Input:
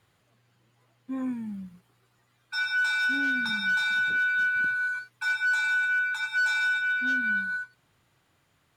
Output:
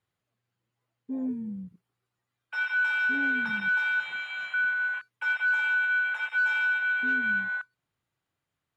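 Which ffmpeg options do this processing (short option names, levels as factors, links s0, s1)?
-filter_complex "[0:a]afwtdn=0.0224,asettb=1/sr,asplit=3[s0][s1][s2];[s0]atrim=end=3.964[s3];[s1]atrim=start=3.96:end=4.54,asetpts=PTS-STARTPTS,afade=t=in:d=0.004:c=qsin,afade=t=out:st=0.576:d=0.004:c=qsin,asplit=2[s4][s5];[s5]adelay=38,volume=0.794[s6];[s4][s6]amix=inputs=2:normalize=0,atrim=end_sample=25578[s7];[s2]atrim=start=4.536[s8];[s3][s7]acrossfade=d=0.004:c1=hsin:c2=qsin[s9];[s9][s8]acrossfade=d=0.004:c1=qsin:c2=hsin"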